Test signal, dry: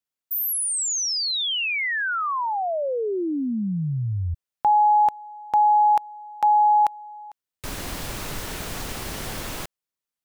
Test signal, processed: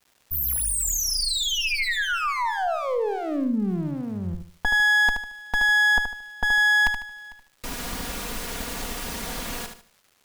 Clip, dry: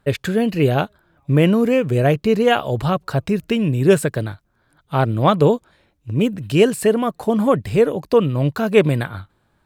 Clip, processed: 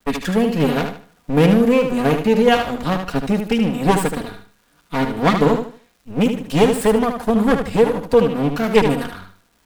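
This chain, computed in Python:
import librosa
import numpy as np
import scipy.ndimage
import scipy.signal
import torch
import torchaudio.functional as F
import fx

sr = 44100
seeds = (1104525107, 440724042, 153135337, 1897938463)

p1 = fx.lower_of_two(x, sr, delay_ms=4.2)
p2 = fx.dmg_crackle(p1, sr, seeds[0], per_s=460.0, level_db=-49.0)
p3 = p2 + fx.echo_feedback(p2, sr, ms=75, feedback_pct=30, wet_db=-7, dry=0)
y = p3 * librosa.db_to_amplitude(1.0)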